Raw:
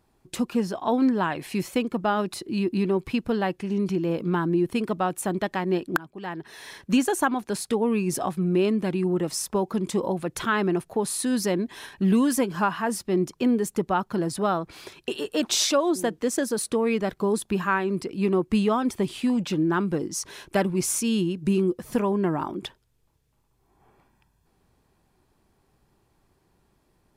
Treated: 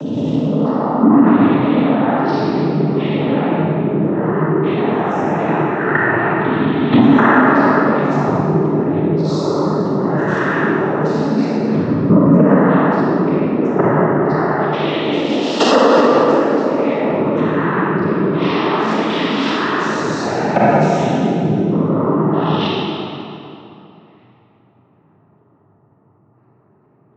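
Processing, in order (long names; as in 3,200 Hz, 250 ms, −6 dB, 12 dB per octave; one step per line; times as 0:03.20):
peak hold with a rise ahead of every peak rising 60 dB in 1.68 s
0:18.32–0:20.00: high-pass filter 1,400 Hz 6 dB per octave
gate on every frequency bin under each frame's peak −20 dB strong
output level in coarse steps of 18 dB
cochlear-implant simulation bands 12
high-frequency loss of the air 230 metres
convolution reverb RT60 2.9 s, pre-delay 27 ms, DRR −6 dB
boost into a limiter +15 dB
level −1 dB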